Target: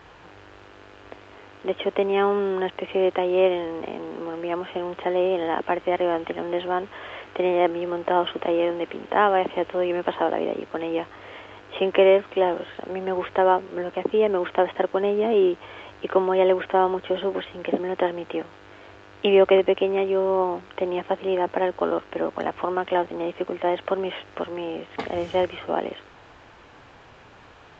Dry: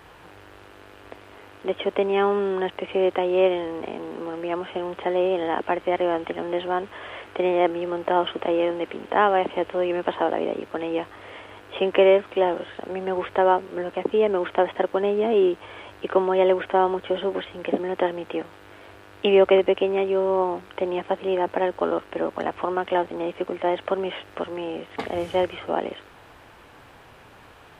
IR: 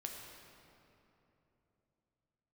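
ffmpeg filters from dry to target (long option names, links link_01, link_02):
-ar 16000 -c:a aac -b:a 64k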